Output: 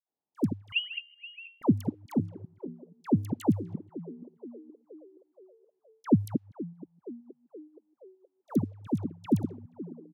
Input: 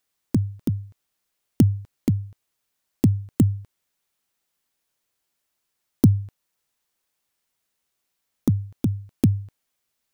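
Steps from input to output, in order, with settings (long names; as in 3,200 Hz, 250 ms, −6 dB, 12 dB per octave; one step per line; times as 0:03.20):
delay that plays each chunk backwards 131 ms, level −9.5 dB
parametric band 850 Hz +11 dB 0.54 octaves
on a send: echo with shifted repeats 476 ms, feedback 56%, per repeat +69 Hz, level −18 dB
on the sum: low-pass that shuts in the quiet parts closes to 430 Hz, open at −18.5 dBFS
high-pass filter 200 Hz 12 dB per octave
all-pass dispersion lows, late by 95 ms, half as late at 1,000 Hz
0:00.72–0:01.62: voice inversion scrambler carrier 3,000 Hz
tape wow and flutter 22 cents
level −2 dB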